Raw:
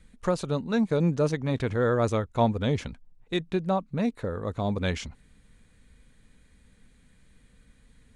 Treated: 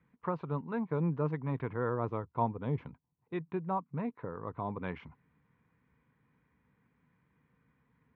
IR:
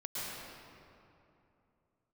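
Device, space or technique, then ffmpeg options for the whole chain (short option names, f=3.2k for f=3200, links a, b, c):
bass cabinet: -filter_complex "[0:a]highpass=f=85:w=0.5412,highpass=f=85:w=1.3066,equalizer=f=90:t=q:w=4:g=-8,equalizer=f=150:t=q:w=4:g=4,equalizer=f=210:t=q:w=4:g=-5,equalizer=f=580:t=q:w=4:g=-6,equalizer=f=1k:t=q:w=4:g=10,equalizer=f=1.7k:t=q:w=4:g=-3,lowpass=f=2.2k:w=0.5412,lowpass=f=2.2k:w=1.3066,asettb=1/sr,asplit=3[a][b][c];[a]atrim=end=1.894[d];[b]atrim=start=1.89:end=3.34,asetpts=PTS-STARTPTS,afade=t=in:d=0.004:c=qsin,afade=t=out:st=1.446:d=0.004:c=qsin,equalizer=f=1.8k:t=o:w=1.6:g=-5[e];[c]atrim=start=3.336[f];[d][e]acrossfade=d=0.004:c1=hsin:c2=qsin[g];[g][f]acrossfade=d=0.004:c1=qsin:c2=hsin,volume=-7.5dB"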